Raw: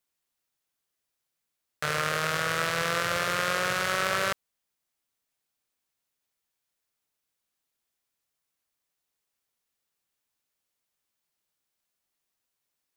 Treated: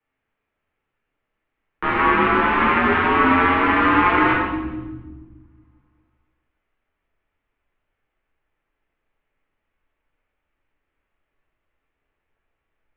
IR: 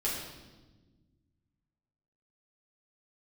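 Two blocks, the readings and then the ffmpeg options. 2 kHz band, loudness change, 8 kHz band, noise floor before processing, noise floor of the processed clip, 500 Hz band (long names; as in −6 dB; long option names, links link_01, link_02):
+9.0 dB, +10.0 dB, below −35 dB, −83 dBFS, −79 dBFS, +8.5 dB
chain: -filter_complex "[0:a]highpass=frequency=180:width_type=q:width=0.5412,highpass=frequency=180:width_type=q:width=1.307,lowpass=frequency=2800:width_type=q:width=0.5176,lowpass=frequency=2800:width_type=q:width=0.7071,lowpass=frequency=2800:width_type=q:width=1.932,afreqshift=-260[link_01];[1:a]atrim=start_sample=2205[link_02];[link_01][link_02]afir=irnorm=-1:irlink=0,asubboost=boost=4:cutoff=61,acrossover=split=180[link_03][link_04];[link_03]acompressor=threshold=-38dB:ratio=6[link_05];[link_05][link_04]amix=inputs=2:normalize=0,volume=6.5dB"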